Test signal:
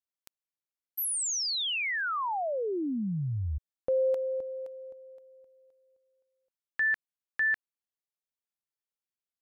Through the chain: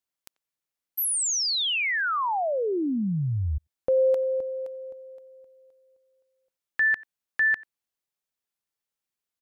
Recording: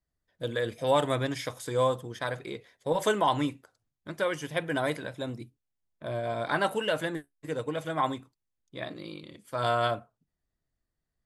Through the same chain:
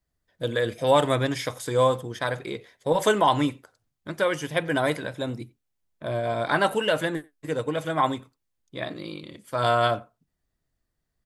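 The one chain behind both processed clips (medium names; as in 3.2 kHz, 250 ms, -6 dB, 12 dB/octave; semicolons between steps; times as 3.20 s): speakerphone echo 90 ms, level -23 dB; trim +5 dB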